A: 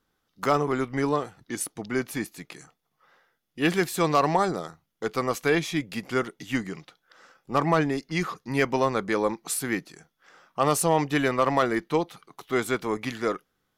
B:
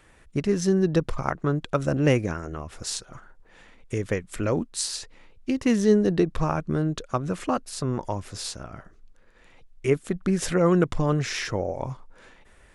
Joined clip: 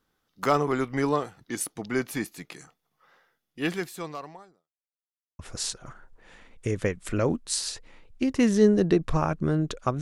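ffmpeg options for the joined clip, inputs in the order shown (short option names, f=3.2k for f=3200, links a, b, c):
-filter_complex "[0:a]apad=whole_dur=10.01,atrim=end=10.01,asplit=2[a][b];[a]atrim=end=4.72,asetpts=PTS-STARTPTS,afade=t=out:st=3.33:d=1.39:c=qua[c];[b]atrim=start=4.72:end=5.39,asetpts=PTS-STARTPTS,volume=0[d];[1:a]atrim=start=2.66:end=7.28,asetpts=PTS-STARTPTS,afade=t=in:d=0.004:c=hsin[e];[c][d][e]concat=n=3:v=0:a=1"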